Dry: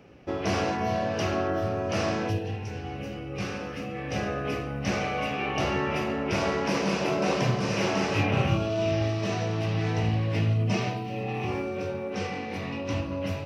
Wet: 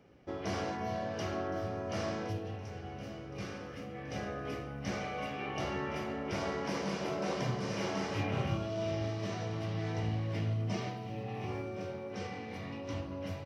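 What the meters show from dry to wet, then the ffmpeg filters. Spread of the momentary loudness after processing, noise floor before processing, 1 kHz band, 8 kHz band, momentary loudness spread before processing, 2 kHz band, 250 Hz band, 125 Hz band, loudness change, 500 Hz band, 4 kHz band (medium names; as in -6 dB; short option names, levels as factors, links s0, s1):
8 LU, -36 dBFS, -9.0 dB, -9.0 dB, 8 LU, -10.0 dB, -9.0 dB, -9.0 dB, -9.0 dB, -9.0 dB, -9.5 dB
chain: -filter_complex "[0:a]bandreject=f=2600:w=9.1,asplit=2[s0][s1];[s1]aecho=0:1:1067|2134|3201|4268:0.178|0.0782|0.0344|0.0151[s2];[s0][s2]amix=inputs=2:normalize=0,volume=0.355"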